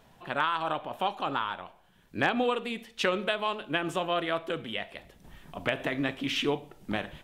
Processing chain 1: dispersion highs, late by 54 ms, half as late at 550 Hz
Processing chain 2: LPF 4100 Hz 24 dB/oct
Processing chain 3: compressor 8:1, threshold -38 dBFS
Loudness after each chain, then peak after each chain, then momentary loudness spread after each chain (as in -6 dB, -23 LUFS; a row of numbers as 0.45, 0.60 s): -31.0, -31.0, -42.5 LUFS; -14.5, -12.0, -22.5 dBFS; 11, 9, 8 LU